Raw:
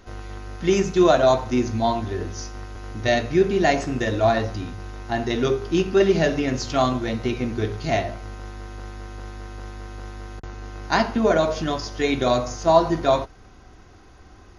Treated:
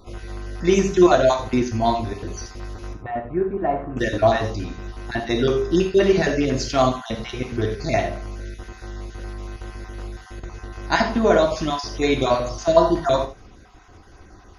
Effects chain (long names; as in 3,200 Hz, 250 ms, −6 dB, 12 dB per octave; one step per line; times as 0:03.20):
time-frequency cells dropped at random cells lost 26%
0:02.93–0:03.97: transistor ladder low-pass 1,600 Hz, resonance 30%
reverb whose tail is shaped and stops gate 110 ms flat, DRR 5.5 dB
level +1.5 dB